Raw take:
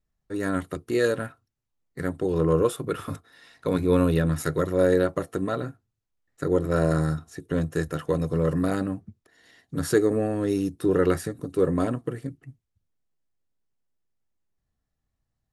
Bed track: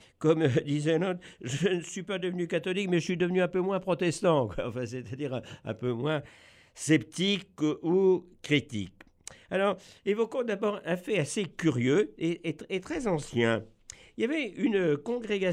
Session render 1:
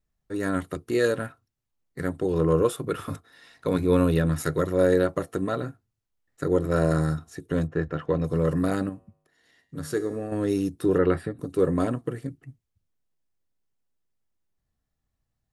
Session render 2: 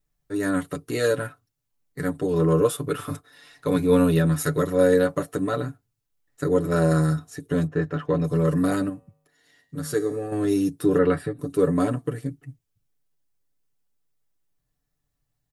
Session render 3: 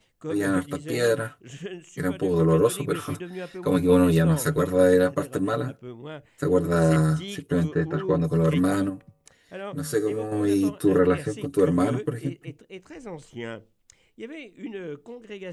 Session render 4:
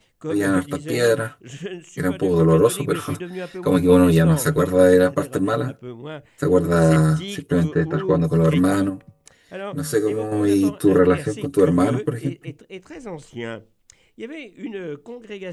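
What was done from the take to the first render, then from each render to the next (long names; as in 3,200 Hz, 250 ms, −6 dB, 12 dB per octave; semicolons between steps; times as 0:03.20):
0:07.66–0:08.23: low-pass filter 1,700 Hz → 3,800 Hz; 0:08.89–0:10.32: tuned comb filter 51 Hz, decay 0.83 s, harmonics odd; 0:10.98–0:11.39: moving average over 7 samples
high-shelf EQ 6,900 Hz +6 dB; comb filter 6.9 ms, depth 67%
mix in bed track −9 dB
level +4.5 dB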